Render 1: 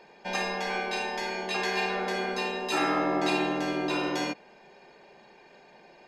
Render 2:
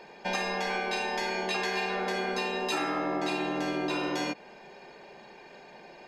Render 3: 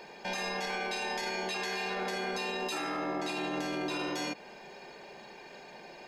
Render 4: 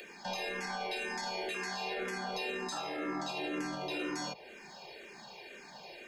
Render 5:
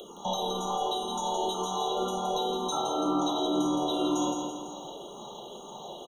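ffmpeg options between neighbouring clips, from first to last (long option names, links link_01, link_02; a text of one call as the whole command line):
ffmpeg -i in.wav -af "acompressor=threshold=-32dB:ratio=6,volume=4.5dB" out.wav
ffmpeg -i in.wav -af "highshelf=frequency=4700:gain=7.5,alimiter=level_in=2.5dB:limit=-24dB:level=0:latency=1:release=16,volume=-2.5dB" out.wav
ffmpeg -i in.wav -filter_complex "[0:a]acrossover=split=150|500|2200[link_01][link_02][link_03][link_04];[link_04]acompressor=mode=upward:threshold=-44dB:ratio=2.5[link_05];[link_01][link_02][link_03][link_05]amix=inputs=4:normalize=0,asplit=2[link_06][link_07];[link_07]afreqshift=-2[link_08];[link_06][link_08]amix=inputs=2:normalize=1" out.wav
ffmpeg -i in.wav -filter_complex "[0:a]asplit=2[link_01][link_02];[link_02]aecho=0:1:167|334|501|668|835|1002|1169:0.562|0.292|0.152|0.0791|0.0411|0.0214|0.0111[link_03];[link_01][link_03]amix=inputs=2:normalize=0,afftfilt=real='re*eq(mod(floor(b*sr/1024/1400),2),0)':imag='im*eq(mod(floor(b*sr/1024/1400),2),0)':win_size=1024:overlap=0.75,volume=8.5dB" out.wav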